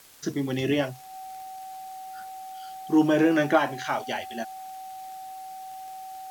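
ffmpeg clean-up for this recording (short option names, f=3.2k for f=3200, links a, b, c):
-af "adeclick=t=4,bandreject=f=760:w=30,afwtdn=0.0025"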